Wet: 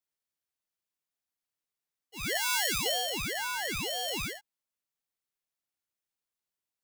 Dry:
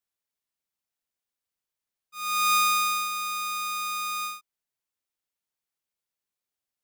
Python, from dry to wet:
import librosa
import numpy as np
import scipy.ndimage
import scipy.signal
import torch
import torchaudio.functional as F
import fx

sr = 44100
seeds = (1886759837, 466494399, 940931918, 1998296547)

y = fx.tone_stack(x, sr, knobs='10-0-10', at=(2.37, 2.86))
y = fx.ring_lfo(y, sr, carrier_hz=1100.0, swing_pct=80, hz=1.0)